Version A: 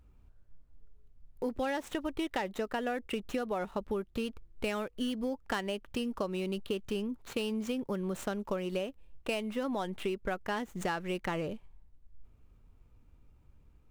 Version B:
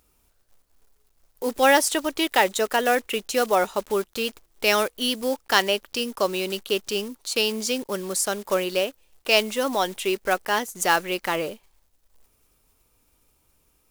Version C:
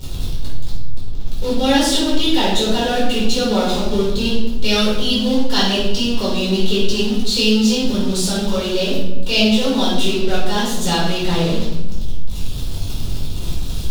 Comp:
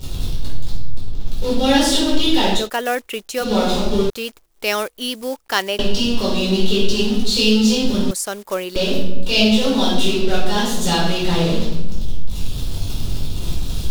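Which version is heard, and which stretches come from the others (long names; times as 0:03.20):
C
0:02.62–0:03.46: punch in from B, crossfade 0.16 s
0:04.10–0:05.79: punch in from B
0:08.11–0:08.76: punch in from B
not used: A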